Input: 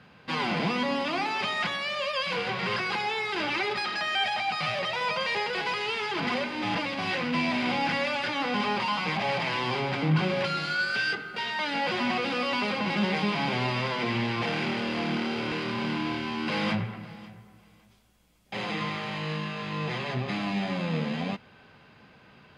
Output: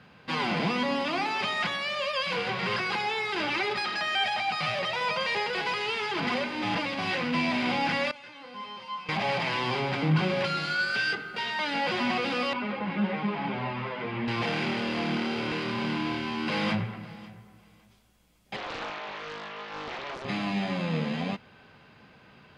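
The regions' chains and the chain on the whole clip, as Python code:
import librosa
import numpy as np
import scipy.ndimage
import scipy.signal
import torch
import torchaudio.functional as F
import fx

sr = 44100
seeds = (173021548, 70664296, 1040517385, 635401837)

y = fx.chain(x, sr, fx.highpass(hz=44.0, slope=12),
    fx.comb_fb(f0_hz=520.0, decay_s=0.46, harmonics='all', damping=0.0, mix_pct=90), at=(8.11, 9.09))
y = fx.chain(y, sr, fx.lowpass(hz=2200.0, slope=12),
    fx.ensemble(), at=(12.53, 14.28))
y = fx.chain(y, sr, fx.highpass(hz=470.0, slope=12),
    fx.air_absorb(metres=280.0),
    fx.doppler_dist(depth_ms=0.97), at=(18.56, 20.25))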